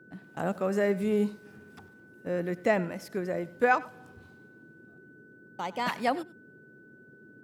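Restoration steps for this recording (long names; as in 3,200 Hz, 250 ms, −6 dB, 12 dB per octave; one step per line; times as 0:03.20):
notch filter 1,500 Hz, Q 30
noise reduction from a noise print 20 dB
echo removal 96 ms −19.5 dB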